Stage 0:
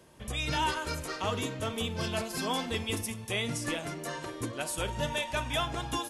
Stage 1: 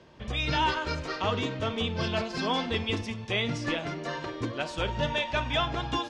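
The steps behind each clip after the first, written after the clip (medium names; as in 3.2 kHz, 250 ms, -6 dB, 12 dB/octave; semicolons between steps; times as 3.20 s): low-pass 5.1 kHz 24 dB/octave; trim +3.5 dB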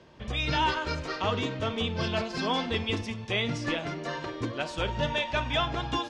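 no audible change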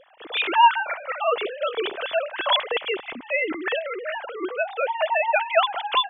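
formants replaced by sine waves; trim +6 dB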